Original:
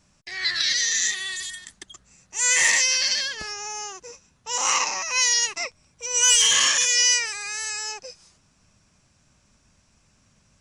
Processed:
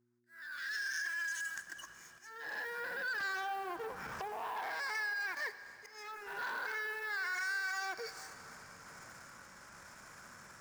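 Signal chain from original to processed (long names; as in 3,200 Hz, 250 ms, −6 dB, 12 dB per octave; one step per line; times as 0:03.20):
pitch glide at a constant tempo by −3.5 semitones ending unshifted
source passing by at 0:04.17, 20 m/s, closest 2.8 metres
camcorder AGC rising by 7.1 dB per second
treble cut that deepens with the level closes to 640 Hz, closed at −25.5 dBFS
high shelf with overshoot 2,300 Hz −13 dB, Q 3
downward compressor 4 to 1, threshold −50 dBFS, peak gain reduction 21.5 dB
transient designer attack −5 dB, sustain +4 dB
leveller curve on the samples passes 2
volume swells 489 ms
hum with harmonics 120 Hz, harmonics 3, −74 dBFS −4 dB per octave
RIAA equalisation recording
dense smooth reverb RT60 3.2 s, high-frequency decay 1×, DRR 12 dB
level +5 dB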